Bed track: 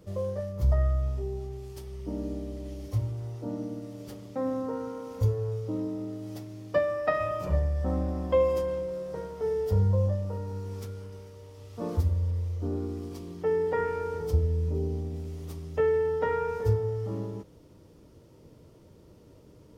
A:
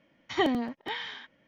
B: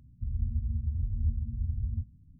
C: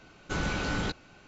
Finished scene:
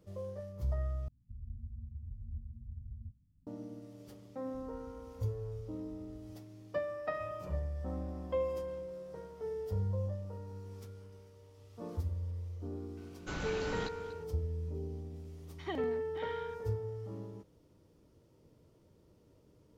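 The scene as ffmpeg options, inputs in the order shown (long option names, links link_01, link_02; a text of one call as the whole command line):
ffmpeg -i bed.wav -i cue0.wav -i cue1.wav -i cue2.wav -filter_complex "[2:a]asplit=2[link_01][link_02];[0:a]volume=-10.5dB[link_03];[link_02]equalizer=frequency=160:width=0.59:gain=-14[link_04];[3:a]aecho=1:1:240:0.2[link_05];[1:a]highshelf=frequency=4400:gain=-6.5[link_06];[link_03]asplit=2[link_07][link_08];[link_07]atrim=end=1.084[link_09];[link_01]atrim=end=2.39,asetpts=PTS-STARTPTS,volume=-14dB[link_10];[link_08]atrim=start=3.466[link_11];[link_04]atrim=end=2.39,asetpts=PTS-STARTPTS,volume=-18dB,afade=type=in:duration=0.004:curve=hsin,afade=type=out:start_time=2.386:duration=0.004:curve=hsin,adelay=4320[link_12];[link_05]atrim=end=1.27,asetpts=PTS-STARTPTS,volume=-8.5dB,afade=type=in:duration=0.004:curve=hsin,afade=type=out:start_time=1.266:duration=0.004:curve=hsin,adelay=12970[link_13];[link_06]atrim=end=1.47,asetpts=PTS-STARTPTS,volume=-13.5dB,afade=type=in:duration=0.004:curve=hsin,afade=type=out:start_time=1.466:duration=0.004:curve=hsin,adelay=15290[link_14];[link_09][link_10]acrossfade=duration=0.004:curve1=hsin:curve2=hsin[link_15];[link_15][link_11]acrossfade=duration=0.004:curve1=hsin:curve2=hsin[link_16];[link_16][link_12][link_13][link_14]amix=inputs=4:normalize=0" out.wav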